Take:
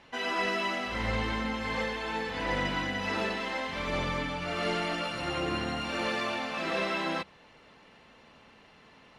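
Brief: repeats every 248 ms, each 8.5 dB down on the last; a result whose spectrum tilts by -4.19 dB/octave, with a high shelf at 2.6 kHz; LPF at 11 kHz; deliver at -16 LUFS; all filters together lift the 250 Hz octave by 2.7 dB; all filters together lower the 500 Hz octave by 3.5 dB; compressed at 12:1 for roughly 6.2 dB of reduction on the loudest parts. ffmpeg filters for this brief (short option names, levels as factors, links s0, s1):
-af "lowpass=11000,equalizer=f=250:t=o:g=5,equalizer=f=500:t=o:g=-6,highshelf=f=2600:g=3,acompressor=threshold=0.0251:ratio=12,aecho=1:1:248|496|744|992:0.376|0.143|0.0543|0.0206,volume=8.91"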